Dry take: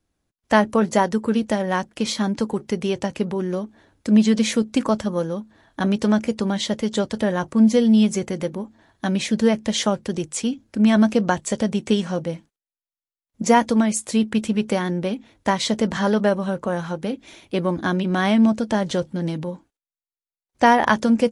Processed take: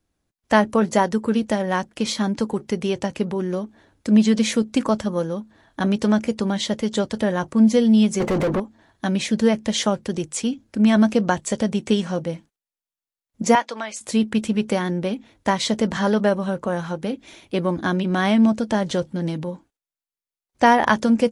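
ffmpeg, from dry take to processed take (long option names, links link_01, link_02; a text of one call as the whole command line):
ffmpeg -i in.wav -filter_complex "[0:a]asettb=1/sr,asplit=3[link_01][link_02][link_03];[link_01]atrim=end=8.204[link_04];[link_02]atrim=start=8.2:end=8.6,asetpts=PTS-STARTPTS,afade=type=in:duration=0.004:curve=qsin,afade=type=out:start_time=0.396:duration=0.004:curve=qsin,asplit=2[link_05][link_06];[link_06]highpass=frequency=720:poles=1,volume=35dB,asoftclip=type=tanh:threshold=-12.5dB[link_07];[link_05][link_07]amix=inputs=2:normalize=0,lowpass=frequency=1000:poles=1,volume=-6dB[link_08];[link_03]atrim=start=8.596[link_09];[link_04][link_08]acrossfade=duration=0.004:curve1=hsin:curve2=qsin[link_10];[link_10][link_09]acrossfade=duration=0.004:curve1=qsin:curve2=hsin,asettb=1/sr,asplit=3[link_11][link_12][link_13];[link_11]atrim=end=13.554[link_14];[link_12]atrim=start=13.55:end=14.01,asetpts=PTS-STARTPTS,afade=type=in:duration=0.004:curve=qsin,afade=type=out:start_time=0.456:duration=0.004:curve=qsin,highpass=750,lowpass=5100[link_15];[link_13]atrim=start=14.006[link_16];[link_14][link_15]acrossfade=duration=0.004:curve1=hsin:curve2=qsin[link_17];[link_17][link_16]acrossfade=duration=0.004:curve1=qsin:curve2=hsin" out.wav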